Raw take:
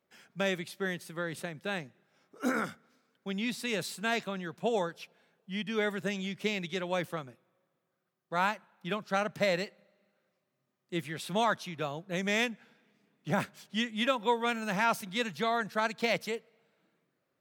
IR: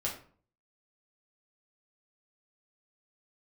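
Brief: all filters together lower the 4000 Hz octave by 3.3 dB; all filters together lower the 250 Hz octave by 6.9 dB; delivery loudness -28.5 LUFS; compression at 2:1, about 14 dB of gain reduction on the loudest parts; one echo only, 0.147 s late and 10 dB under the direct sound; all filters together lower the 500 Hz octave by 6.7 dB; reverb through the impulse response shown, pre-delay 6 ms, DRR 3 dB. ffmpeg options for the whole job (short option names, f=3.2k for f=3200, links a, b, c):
-filter_complex "[0:a]equalizer=f=250:t=o:g=-8,equalizer=f=500:t=o:g=-6.5,equalizer=f=4k:t=o:g=-4,acompressor=threshold=-52dB:ratio=2,aecho=1:1:147:0.316,asplit=2[a][b];[1:a]atrim=start_sample=2205,adelay=6[c];[b][c]afir=irnorm=-1:irlink=0,volume=-6.5dB[d];[a][d]amix=inputs=2:normalize=0,volume=17dB"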